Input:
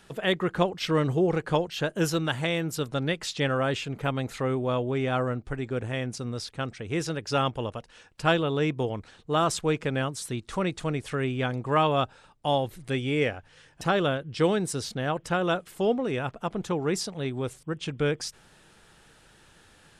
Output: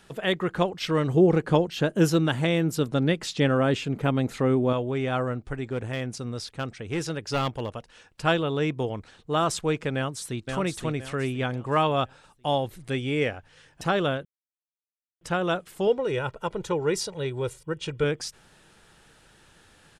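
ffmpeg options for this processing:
-filter_complex "[0:a]asettb=1/sr,asplit=3[a][b][c];[a]atrim=end=1.144[d];[b]atrim=start=1.14:end=4.73,asetpts=PTS-STARTPTS,afade=t=in:d=0.004:c=qsin,afade=t=out:st=3.586:d=0.004:c=qsin,equalizer=f=240:t=o:w=2:g=7.5[e];[c]atrim=start=4.726[f];[d][e]acrossfade=d=0.004:c1=hsin:c2=qsin[g];[g][f]acrossfade=d=0.004:c1=qsin:c2=hsin,asettb=1/sr,asplit=3[h][i][j];[h]atrim=end=5.714[k];[i]atrim=start=5.71:end=7.71,asetpts=PTS-STARTPTS,afade=t=in:d=0.004:c=qsin,afade=t=out:st=1.996:d=0.004:c=qsin,aeval=exprs='clip(val(0),-1,0.0631)':c=same[l];[j]atrim=start=7.706[m];[k][l]acrossfade=d=0.004:c1=hsin:c2=qsin[n];[n][m]acrossfade=d=0.004:c1=qsin:c2=hsin,asplit=2[o][p];[p]afade=t=in:st=9.95:d=0.01,afade=t=out:st=10.47:d=0.01,aecho=0:1:520|1040|1560|2080:0.562341|0.196819|0.0688868|0.0241104[q];[o][q]amix=inputs=2:normalize=0,asettb=1/sr,asplit=3[r][s][t];[r]atrim=end=15.874[u];[s]atrim=start=15.87:end=18.04,asetpts=PTS-STARTPTS,afade=t=in:d=0.004:c=qsin,afade=t=out:st=2.166:d=0.004:c=qsin,aecho=1:1:2.1:0.65,atrim=end_sample=95697[v];[t]atrim=start=18.036[w];[u][v]acrossfade=d=0.004:c1=hsin:c2=qsin[x];[x][w]acrossfade=d=0.004:c1=qsin:c2=hsin,asplit=3[y][z][aa];[y]atrim=end=14.25,asetpts=PTS-STARTPTS,afade=t=out:st=14.246:d=0.004:c=hsin[ab];[z]atrim=start=14.25:end=15.21,asetpts=PTS-STARTPTS,volume=0[ac];[aa]atrim=start=15.21,asetpts=PTS-STARTPTS,afade=t=in:d=0.004:c=hsin[ad];[ab][ac][ad]concat=n=3:v=0:a=1"

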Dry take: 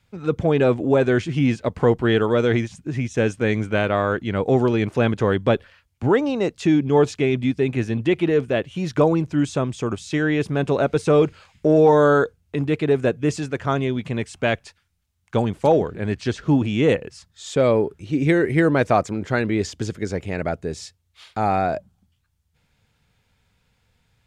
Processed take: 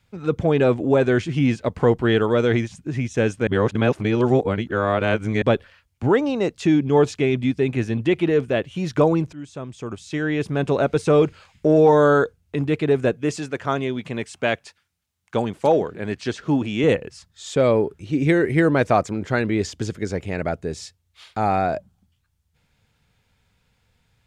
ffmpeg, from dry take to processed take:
-filter_complex "[0:a]asettb=1/sr,asplit=3[a][b][c];[a]atrim=end=13.134[d];[b]atrim=start=13.13:end=16.84,asetpts=PTS-STARTPTS,afade=t=in:d=0.004:c=qsin,afade=t=out:st=3.706:d=0.004:c=qsin,highpass=f=210:p=1[e];[c]atrim=start=16.836[f];[d][e]acrossfade=d=0.004:c1=hsin:c2=qsin[g];[g][f]acrossfade=d=0.004:c1=qsin:c2=hsin,asplit=4[h][i][j][k];[h]atrim=end=3.472[l];[i]atrim=start=3.468:end=5.422,asetpts=PTS-STARTPTS,areverse[m];[j]atrim=start=5.418:end=9.33,asetpts=PTS-STARTPTS,afade=t=out:st=3.908:d=0.004:c=hsin:silence=0.11885[n];[k]atrim=start=9.33,asetpts=PTS-STARTPTS,afade=t=in:d=1.35:silence=0.11885[o];[l][m]acrossfade=d=0.004:c1=hsin:c2=hsin[p];[n][o]concat=n=2:v=0:a=1[q];[p][q]acrossfade=d=0.004:c1=hsin:c2=hsin"

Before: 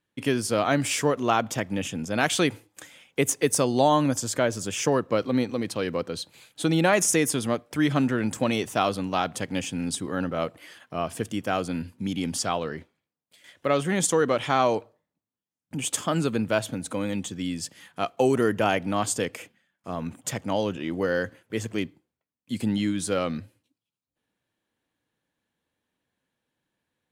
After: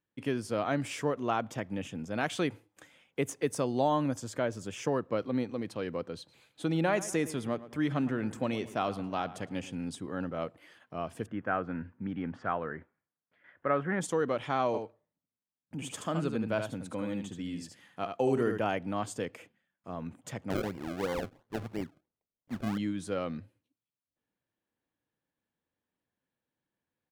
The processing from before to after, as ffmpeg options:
-filter_complex "[0:a]asettb=1/sr,asplit=3[a][b][c];[a]atrim=end=6.174[d];[b]atrim=start=6.17:end=9.75,asetpts=PTS-STARTPTS,afade=t=in:d=0.004:c=qsin,afade=t=out:st=3.576:d=0.004:c=qsin,asplit=2[e][f];[f]adelay=111,lowpass=f=3.4k:p=1,volume=-15.5dB,asplit=2[g][h];[h]adelay=111,lowpass=f=3.4k:p=1,volume=0.46,asplit=2[i][j];[j]adelay=111,lowpass=f=3.4k:p=1,volume=0.46,asplit=2[k][l];[l]adelay=111,lowpass=f=3.4k:p=1,volume=0.46[m];[e][g][i][k][m]amix=inputs=5:normalize=0,atrim=end_sample=157878[n];[c]atrim=start=9.746[o];[d][n]acrossfade=d=0.004:c1=hsin:c2=qsin[p];[p][o]acrossfade=d=0.004:c1=qsin:c2=hsin,asplit=3[q][r][s];[q]afade=t=out:st=11.26:d=0.02[t];[r]lowpass=f=1.6k:t=q:w=2.6,afade=t=in:st=11.26:d=0.02,afade=t=out:st=14:d=0.02[u];[s]afade=t=in:st=14:d=0.02[v];[t][u][v]amix=inputs=3:normalize=0,asplit=3[w][x][y];[w]afade=t=out:st=14.73:d=0.02[z];[x]aecho=1:1:75:0.501,afade=t=in:st=14.73:d=0.02,afade=t=out:st=18.57:d=0.02[aa];[y]afade=t=in:st=18.57:d=0.02[ab];[z][aa][ab]amix=inputs=3:normalize=0,asettb=1/sr,asplit=3[ac][ad][ae];[ac]atrim=end=20.504[af];[ad]atrim=start=20.5:end=22.78,asetpts=PTS-STARTPTS,afade=t=in:d=0.004:c=qsin,afade=t=out:st=2.276:d=0.004:c=qsin,acrusher=samples=33:mix=1:aa=0.000001:lfo=1:lforange=33:lforate=2.9[ag];[ae]atrim=start=22.776[ah];[af][ag]acrossfade=d=0.004:c1=hsin:c2=qsin[ai];[ai][ah]acrossfade=d=0.004:c1=qsin:c2=hsin,highshelf=f=3.5k:g=-10.5,volume=-7dB"

